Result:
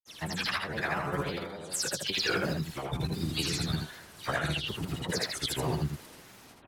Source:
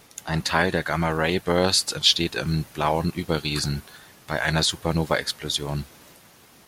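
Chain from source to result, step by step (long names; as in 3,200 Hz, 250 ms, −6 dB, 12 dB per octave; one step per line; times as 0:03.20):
every frequency bin delayed by itself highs early, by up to 120 ms
compressor whose output falls as the input rises −27 dBFS, ratio −0.5
granular cloud, pitch spread up and down by 3 semitones
single-tap delay 80 ms −4.5 dB
level −4 dB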